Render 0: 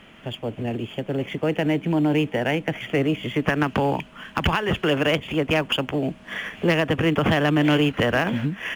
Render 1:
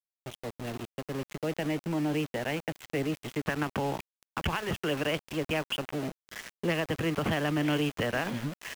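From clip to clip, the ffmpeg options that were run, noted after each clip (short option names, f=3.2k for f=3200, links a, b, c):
-af "aeval=exprs='val(0)*gte(abs(val(0)),0.0447)':c=same,volume=-9dB"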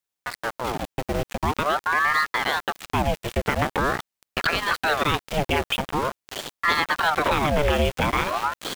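-filter_complex "[0:a]asplit=2[a][b];[b]alimiter=level_in=2dB:limit=-24dB:level=0:latency=1:release=193,volume=-2dB,volume=-2.5dB[c];[a][c]amix=inputs=2:normalize=0,aeval=exprs='val(0)*sin(2*PI*880*n/s+880*0.75/0.45*sin(2*PI*0.45*n/s))':c=same,volume=7.5dB"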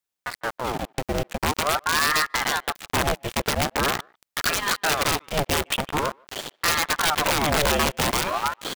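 -filter_complex "[0:a]asplit=2[a][b];[b]adelay=150,highpass=300,lowpass=3.4k,asoftclip=type=hard:threshold=-17dB,volume=-29dB[c];[a][c]amix=inputs=2:normalize=0,aeval=exprs='(mod(4.73*val(0)+1,2)-1)/4.73':c=same"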